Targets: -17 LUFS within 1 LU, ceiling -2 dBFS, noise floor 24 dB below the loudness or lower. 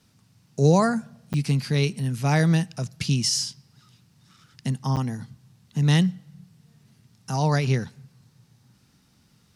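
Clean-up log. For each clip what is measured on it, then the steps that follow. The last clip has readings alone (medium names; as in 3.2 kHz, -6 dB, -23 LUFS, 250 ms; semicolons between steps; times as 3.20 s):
dropouts 2; longest dropout 8.9 ms; loudness -24.0 LUFS; peak level -7.0 dBFS; loudness target -17.0 LUFS
-> interpolate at 1.33/4.96 s, 8.9 ms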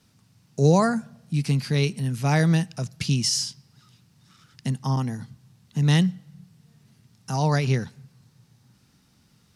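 dropouts 0; loudness -24.0 LUFS; peak level -7.0 dBFS; loudness target -17.0 LUFS
-> trim +7 dB; peak limiter -2 dBFS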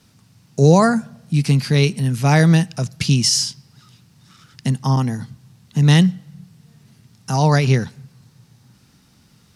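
loudness -17.0 LUFS; peak level -2.0 dBFS; noise floor -55 dBFS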